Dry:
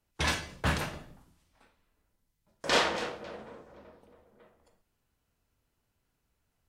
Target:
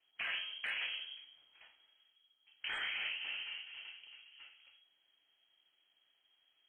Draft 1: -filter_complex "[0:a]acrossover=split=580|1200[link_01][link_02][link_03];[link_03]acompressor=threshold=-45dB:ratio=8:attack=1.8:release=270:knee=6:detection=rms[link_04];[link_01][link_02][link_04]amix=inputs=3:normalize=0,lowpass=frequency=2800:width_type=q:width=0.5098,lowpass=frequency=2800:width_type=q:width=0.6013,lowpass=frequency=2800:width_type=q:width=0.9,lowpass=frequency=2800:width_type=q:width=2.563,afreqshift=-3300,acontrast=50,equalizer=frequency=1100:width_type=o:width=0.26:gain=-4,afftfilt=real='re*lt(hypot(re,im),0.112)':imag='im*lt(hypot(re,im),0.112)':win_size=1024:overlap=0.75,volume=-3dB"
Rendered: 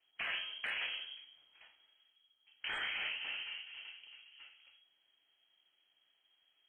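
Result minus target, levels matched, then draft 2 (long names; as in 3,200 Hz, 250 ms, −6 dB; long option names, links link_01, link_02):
downward compressor: peak gain reduction −5 dB
-filter_complex "[0:a]acrossover=split=580|1200[link_01][link_02][link_03];[link_03]acompressor=threshold=-51dB:ratio=8:attack=1.8:release=270:knee=6:detection=rms[link_04];[link_01][link_02][link_04]amix=inputs=3:normalize=0,lowpass=frequency=2800:width_type=q:width=0.5098,lowpass=frequency=2800:width_type=q:width=0.6013,lowpass=frequency=2800:width_type=q:width=0.9,lowpass=frequency=2800:width_type=q:width=2.563,afreqshift=-3300,acontrast=50,equalizer=frequency=1100:width_type=o:width=0.26:gain=-4,afftfilt=real='re*lt(hypot(re,im),0.112)':imag='im*lt(hypot(re,im),0.112)':win_size=1024:overlap=0.75,volume=-3dB"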